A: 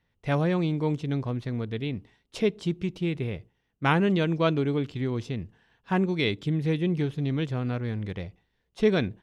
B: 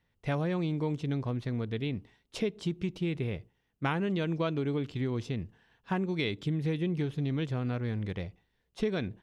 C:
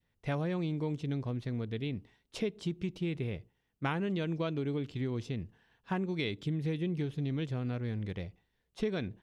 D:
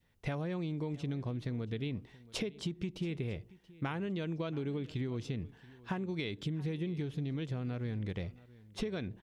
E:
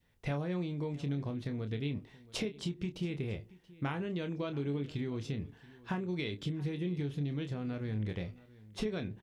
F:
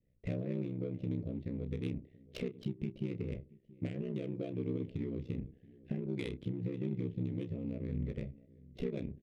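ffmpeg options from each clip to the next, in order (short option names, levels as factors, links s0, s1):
-af "acompressor=threshold=0.0562:ratio=6,volume=0.841"
-af "adynamicequalizer=threshold=0.00398:dfrequency=1100:dqfactor=0.97:tfrequency=1100:tqfactor=0.97:attack=5:release=100:ratio=0.375:range=2:mode=cutabove:tftype=bell,volume=0.75"
-af "acompressor=threshold=0.0112:ratio=6,aecho=1:1:679:0.0944,volume=1.88"
-filter_complex "[0:a]asplit=2[s0][s1];[s1]adelay=28,volume=0.398[s2];[s0][s2]amix=inputs=2:normalize=0"
-af "asuperstop=centerf=1100:order=8:qfactor=0.83,aeval=exprs='val(0)*sin(2*PI*32*n/s)':c=same,adynamicsmooth=sensitivity=7:basefreq=1100,volume=1.19"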